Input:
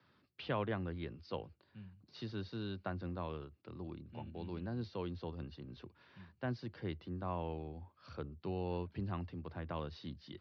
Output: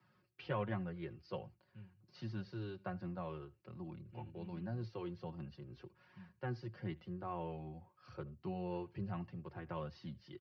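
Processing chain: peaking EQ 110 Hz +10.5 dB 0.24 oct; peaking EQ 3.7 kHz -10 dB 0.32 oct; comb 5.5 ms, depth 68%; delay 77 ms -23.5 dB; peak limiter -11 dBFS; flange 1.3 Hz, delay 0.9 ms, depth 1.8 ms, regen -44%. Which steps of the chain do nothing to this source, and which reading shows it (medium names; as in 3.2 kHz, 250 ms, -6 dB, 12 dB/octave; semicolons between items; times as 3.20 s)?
peak limiter -11 dBFS: peak at its input -21.0 dBFS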